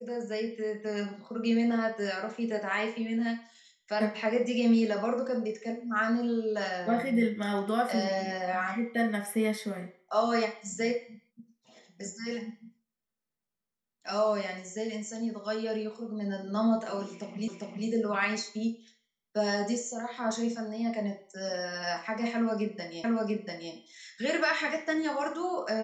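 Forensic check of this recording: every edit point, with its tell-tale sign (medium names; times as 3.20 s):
17.48 s: repeat of the last 0.4 s
23.04 s: repeat of the last 0.69 s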